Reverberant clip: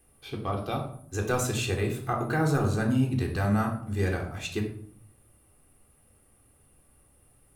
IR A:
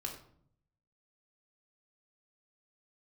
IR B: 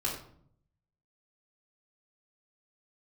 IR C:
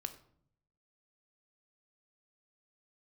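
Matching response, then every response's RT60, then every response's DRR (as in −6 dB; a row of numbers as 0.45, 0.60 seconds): A; 0.60, 0.60, 0.60 seconds; −1.0, −7.0, 7.0 decibels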